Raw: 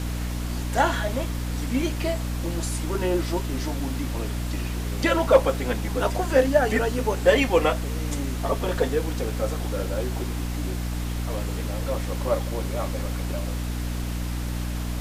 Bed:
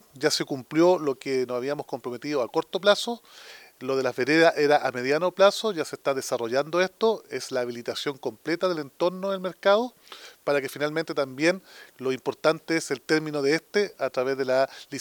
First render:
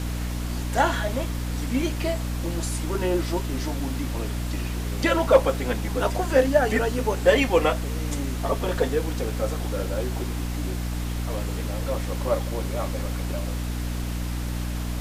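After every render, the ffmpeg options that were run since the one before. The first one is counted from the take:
-af anull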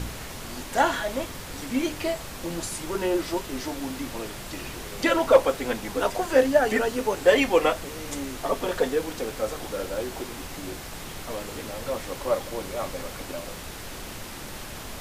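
-af "bandreject=f=60:t=h:w=4,bandreject=f=120:t=h:w=4,bandreject=f=180:t=h:w=4,bandreject=f=240:t=h:w=4,bandreject=f=300:t=h:w=4"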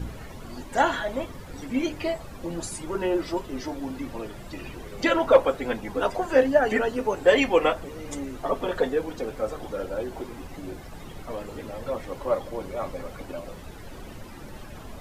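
-af "afftdn=nr=13:nf=-38"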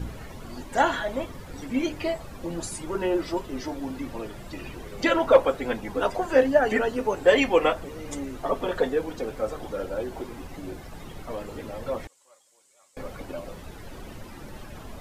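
-filter_complex "[0:a]asettb=1/sr,asplit=3[s0][s1][s2];[s0]atrim=end=12.074[s3];[s1]atrim=start=12.07:end=12.97,asetpts=PTS-STARTPTS,afade=t=in:d=0.004:c=qsin,afade=t=out:st=0.896:d=0.004:c=qsin,bandpass=f=7700:t=q:w=3.8[s4];[s2]atrim=start=12.966[s5];[s3][s4]acrossfade=d=0.004:c1=hsin:c2=qsin[s6];[s6][s5]acrossfade=d=0.004:c1=qsin:c2=hsin"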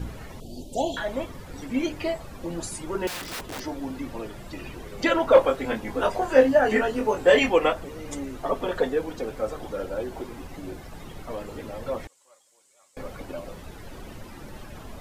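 -filter_complex "[0:a]asettb=1/sr,asplit=3[s0][s1][s2];[s0]atrim=end=0.404[s3];[s1]atrim=start=0.4:end=0.97,asetpts=PTS-STARTPTS,afade=t=in:d=0.004:c=qsin,afade=t=out:st=0.566:d=0.004:c=qsin,asuperstop=centerf=1500:order=8:qfactor=0.63[s4];[s2]atrim=start=0.966[s5];[s3][s4]acrossfade=d=0.004:c1=hsin:c2=qsin[s6];[s6][s5]acrossfade=d=0.004:c1=qsin:c2=hsin,asettb=1/sr,asplit=3[s7][s8][s9];[s7]atrim=end=3.074[s10];[s8]atrim=start=3.07:end=3.6,asetpts=PTS-STARTPTS,afade=t=in:d=0.004:c=qsin,afade=t=out:st=0.526:d=0.004:c=qsin,aeval=exprs='(mod(28.2*val(0)+1,2)-1)/28.2':c=same[s11];[s9]atrim=start=3.596[s12];[s10][s11]acrossfade=d=0.004:c1=hsin:c2=qsin[s13];[s13][s12]acrossfade=d=0.004:c1=qsin:c2=hsin,asettb=1/sr,asplit=3[s14][s15][s16];[s14]atrim=end=5.344[s17];[s15]atrim=start=5.34:end=7.51,asetpts=PTS-STARTPTS,afade=t=in:d=0.004:c=qsin,afade=t=out:st=2.166:d=0.004:c=qsin,asplit=2[s18][s19];[s19]adelay=23,volume=0.596[s20];[s18][s20]amix=inputs=2:normalize=0,atrim=end_sample=95697[s21];[s16]atrim=start=7.506[s22];[s17][s21]acrossfade=d=0.004:c1=hsin:c2=qsin[s23];[s23][s22]acrossfade=d=0.004:c1=qsin:c2=hsin"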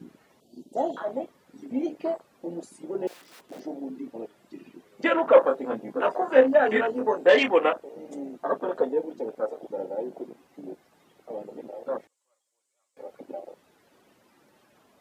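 -af "highpass=240,afwtdn=0.0355"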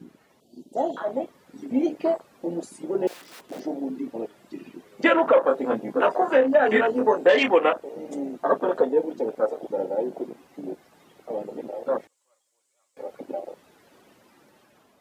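-af "alimiter=limit=0.211:level=0:latency=1:release=227,dynaudnorm=f=450:g=5:m=1.88"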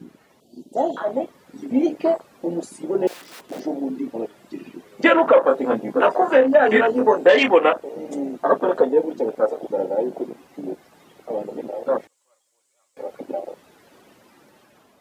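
-af "volume=1.58"

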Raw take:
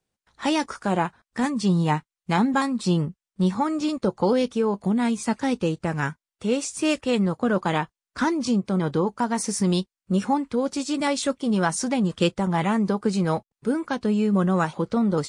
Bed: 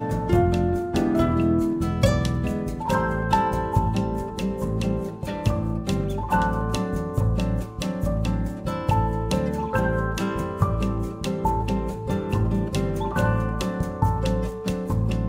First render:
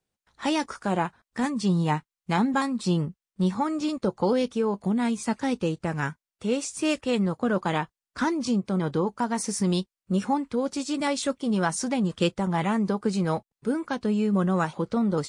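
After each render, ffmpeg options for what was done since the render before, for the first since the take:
-af "volume=0.75"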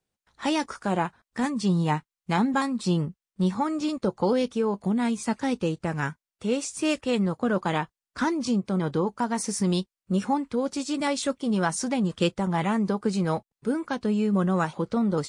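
-af anull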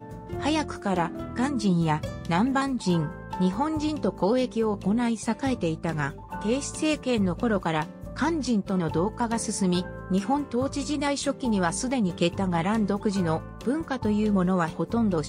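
-filter_complex "[1:a]volume=0.188[s0];[0:a][s0]amix=inputs=2:normalize=0"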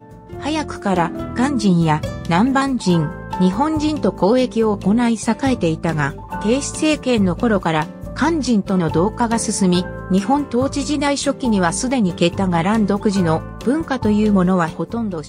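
-af "dynaudnorm=f=110:g=11:m=2.99"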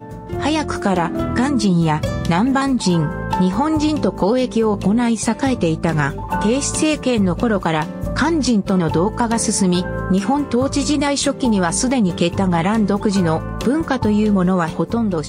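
-filter_complex "[0:a]asplit=2[s0][s1];[s1]alimiter=limit=0.316:level=0:latency=1,volume=1.33[s2];[s0][s2]amix=inputs=2:normalize=0,acompressor=threshold=0.158:ratio=2.5"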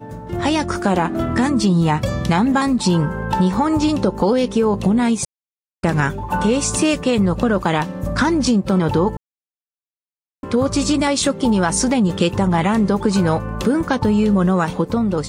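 -filter_complex "[0:a]asplit=5[s0][s1][s2][s3][s4];[s0]atrim=end=5.25,asetpts=PTS-STARTPTS,afade=t=out:st=5.246:d=0.004:c=hsin[s5];[s1]atrim=start=5.25:end=5.83,asetpts=PTS-STARTPTS,volume=0[s6];[s2]atrim=start=5.83:end=9.17,asetpts=PTS-STARTPTS,afade=t=in:d=0.004:c=hsin,afade=t=out:st=3.336:d=0.004:c=hsin[s7];[s3]atrim=start=9.17:end=10.43,asetpts=PTS-STARTPTS,volume=0[s8];[s4]atrim=start=10.43,asetpts=PTS-STARTPTS,afade=t=in:d=0.004:c=hsin[s9];[s5][s6][s7][s8][s9]concat=n=5:v=0:a=1"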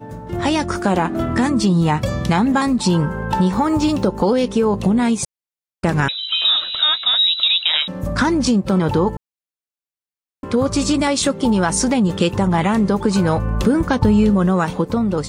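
-filter_complex "[0:a]asettb=1/sr,asplit=3[s0][s1][s2];[s0]atrim=end=3.554[s3];[s1]atrim=start=3.55:end=4.07,asetpts=PTS-STARTPTS,afade=t=in:d=0.004:c=qsin,afade=t=out:st=0.516:d=0.004:c=qsin,acrusher=bits=7:mix=0:aa=0.5[s4];[s2]atrim=start=4.066[s5];[s3][s4]acrossfade=d=0.004:c1=hsin:c2=qsin[s6];[s6][s5]acrossfade=d=0.004:c1=qsin:c2=hsin,asettb=1/sr,asplit=3[s7][s8][s9];[s7]atrim=end=6.084[s10];[s8]atrim=start=6.08:end=7.88,asetpts=PTS-STARTPTS,afade=t=in:d=0.004:c=qsin,afade=t=out:st=1.796:d=0.004:c=qsin,lowpass=f=3400:t=q:w=0.5098,lowpass=f=3400:t=q:w=0.6013,lowpass=f=3400:t=q:w=0.9,lowpass=f=3400:t=q:w=2.563,afreqshift=-4000[s11];[s9]atrim=start=7.876[s12];[s10][s11]acrossfade=d=0.004:c1=hsin:c2=qsin[s13];[s13][s12]acrossfade=d=0.004:c1=qsin:c2=hsin,asettb=1/sr,asplit=3[s14][s15][s16];[s14]atrim=end=13.374[s17];[s15]atrim=start=13.37:end=14.3,asetpts=PTS-STARTPTS,afade=t=in:d=0.004:c=qsin,afade=t=out:st=0.926:d=0.004:c=qsin,lowshelf=f=110:g=11[s18];[s16]atrim=start=14.296[s19];[s17][s18]acrossfade=d=0.004:c1=hsin:c2=qsin[s20];[s20][s19]acrossfade=d=0.004:c1=qsin:c2=hsin"

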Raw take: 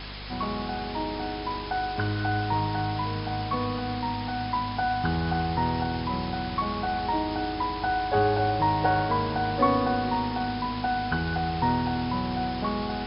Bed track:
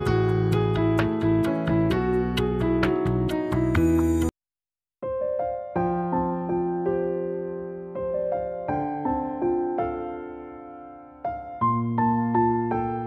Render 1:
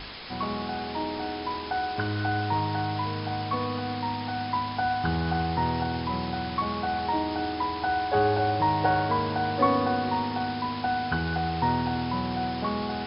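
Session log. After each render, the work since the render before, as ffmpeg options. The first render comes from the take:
-af "bandreject=f=50:t=h:w=4,bandreject=f=100:t=h:w=4,bandreject=f=150:t=h:w=4,bandreject=f=200:t=h:w=4,bandreject=f=250:t=h:w=4"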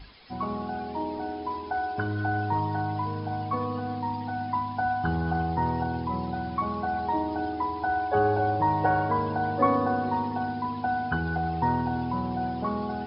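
-af "afftdn=nr=14:nf=-34"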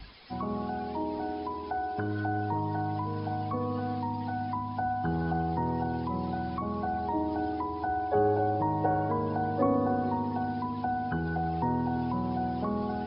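-filter_complex "[0:a]acrossover=split=140|740[s0][s1][s2];[s0]alimiter=level_in=3.98:limit=0.0631:level=0:latency=1,volume=0.251[s3];[s2]acompressor=threshold=0.0112:ratio=6[s4];[s3][s1][s4]amix=inputs=3:normalize=0"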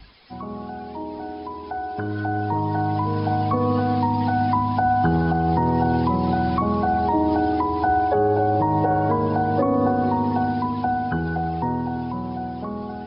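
-af "dynaudnorm=f=450:g=13:m=5.01,alimiter=limit=0.282:level=0:latency=1:release=167"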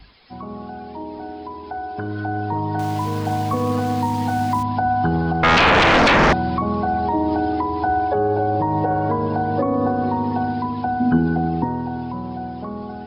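-filter_complex "[0:a]asettb=1/sr,asplit=3[s0][s1][s2];[s0]atrim=end=2.794[s3];[s1]atrim=start=2.79:end=4.63,asetpts=PTS-STARTPTS,afade=t=in:d=0.004:c=qsin,afade=t=out:st=1.836:d=0.004:c=qsin,aeval=exprs='val(0)*gte(abs(val(0)),0.0282)':c=same[s4];[s2]atrim=start=4.626[s5];[s3][s4]acrossfade=d=0.004:c1=hsin:c2=qsin[s6];[s6][s5]acrossfade=d=0.004:c1=qsin:c2=hsin,asettb=1/sr,asplit=3[s7][s8][s9];[s7]atrim=end=5.434[s10];[s8]atrim=start=5.43:end=6.33,asetpts=PTS-STARTPTS,afade=t=in:d=0.004:c=qsin,afade=t=out:st=0.896:d=0.004:c=qsin,aeval=exprs='0.299*sin(PI/2*5.01*val(0)/0.299)':c=same[s11];[s9]atrim=start=6.326[s12];[s10][s11]acrossfade=d=0.004:c1=hsin:c2=qsin[s13];[s13][s12]acrossfade=d=0.004:c1=qsin:c2=hsin,asettb=1/sr,asplit=3[s14][s15][s16];[s14]atrim=end=11.004[s17];[s15]atrim=start=11:end=11.64,asetpts=PTS-STARTPTS,afade=t=in:d=0.004:c=qsin,afade=t=out:st=0.636:d=0.004:c=qsin,equalizer=f=250:t=o:w=0.85:g=13.5[s18];[s16]atrim=start=11.636[s19];[s17][s18]acrossfade=d=0.004:c1=hsin:c2=qsin[s20];[s20][s19]acrossfade=d=0.004:c1=qsin:c2=hsin"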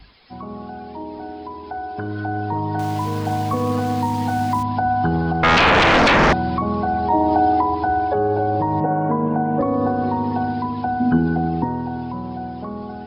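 -filter_complex "[0:a]asettb=1/sr,asplit=3[s0][s1][s2];[s0]atrim=end=7.104[s3];[s1]atrim=start=7.1:end=7.75,asetpts=PTS-STARTPTS,afade=t=in:d=0.004:c=qsin,afade=t=out:st=0.646:d=0.004:c=qsin,equalizer=f=760:t=o:w=0.62:g=8.5[s4];[s2]atrim=start=7.746[s5];[s3][s4]acrossfade=d=0.004:c1=hsin:c2=qsin[s6];[s6][s5]acrossfade=d=0.004:c1=qsin:c2=hsin,asettb=1/sr,asplit=3[s7][s8][s9];[s7]atrim=end=8.804[s10];[s8]atrim=start=8.8:end=9.61,asetpts=PTS-STARTPTS,afade=t=in:d=0.004:c=qsin,afade=t=out:st=0.806:d=0.004:c=qsin,highpass=f=140:w=0.5412,highpass=f=140:w=1.3066,equalizer=f=160:t=q:w=4:g=6,equalizer=f=250:t=q:w=4:g=7,equalizer=f=380:t=q:w=4:g=-4,equalizer=f=1700:t=q:w=4:g=-4,lowpass=f=2300:w=0.5412,lowpass=f=2300:w=1.3066[s11];[s9]atrim=start=9.606[s12];[s10][s11]acrossfade=d=0.004:c1=hsin:c2=qsin[s13];[s13][s12]acrossfade=d=0.004:c1=qsin:c2=hsin"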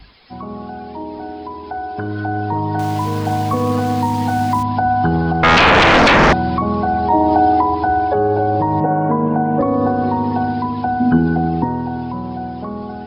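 -af "volume=1.5"

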